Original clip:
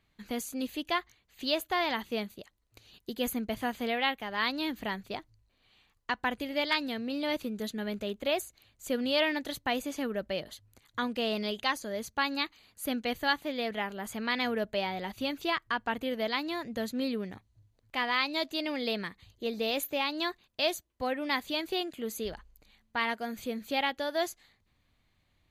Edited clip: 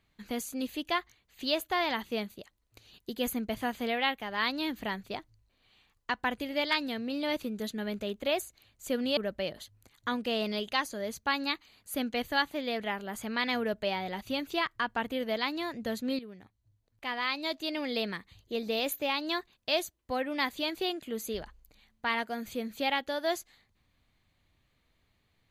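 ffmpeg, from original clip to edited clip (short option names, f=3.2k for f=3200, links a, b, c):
-filter_complex "[0:a]asplit=3[a][b][c];[a]atrim=end=9.172[d];[b]atrim=start=10.078:end=17.1,asetpts=PTS-STARTPTS,afade=t=out:st=7.018:d=0.004:c=hsin:silence=0.223872[e];[c]atrim=start=17.1,asetpts=PTS-STARTPTS,afade=t=in:d=1.75:silence=0.223872[f];[e][f]concat=n=2:v=0:a=1[g];[d][g]acrossfade=d=0.004:c1=hsin:c2=hsin"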